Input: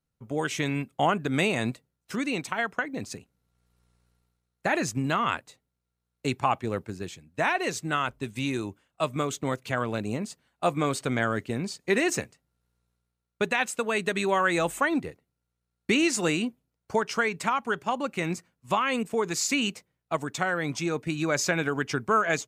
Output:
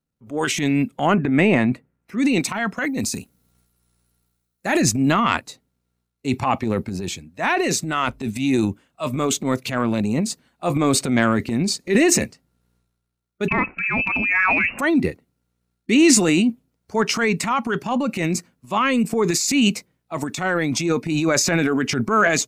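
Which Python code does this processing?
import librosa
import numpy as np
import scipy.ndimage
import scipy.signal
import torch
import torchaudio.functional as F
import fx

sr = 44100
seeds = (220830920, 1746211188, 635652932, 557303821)

y = fx.high_shelf_res(x, sr, hz=2900.0, db=-10.5, q=1.5, at=(1.14, 2.18))
y = fx.high_shelf(y, sr, hz=5300.0, db=11.0, at=(2.77, 4.82))
y = fx.freq_invert(y, sr, carrier_hz=2800, at=(13.48, 14.79))
y = fx.noise_reduce_blind(y, sr, reduce_db=7)
y = fx.peak_eq(y, sr, hz=250.0, db=7.5, octaves=1.2)
y = fx.transient(y, sr, attack_db=-8, sustain_db=9)
y = y * 10.0 ** (5.5 / 20.0)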